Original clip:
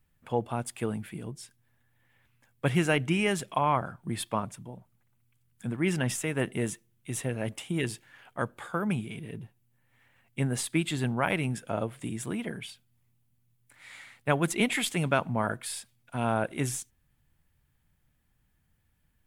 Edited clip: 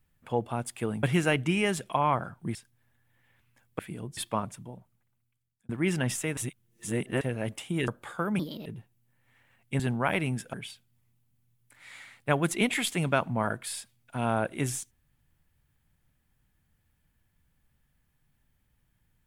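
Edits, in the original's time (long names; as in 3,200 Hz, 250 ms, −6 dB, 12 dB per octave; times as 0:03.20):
0:01.03–0:01.41: swap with 0:02.65–0:04.17
0:04.67–0:05.69: fade out
0:06.37–0:07.21: reverse
0:07.88–0:08.43: remove
0:08.94–0:09.31: play speed 139%
0:10.45–0:10.97: remove
0:11.71–0:12.53: remove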